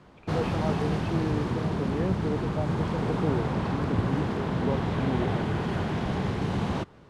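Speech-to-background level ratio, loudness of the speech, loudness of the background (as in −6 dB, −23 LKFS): −5.0 dB, −34.0 LKFS, −29.0 LKFS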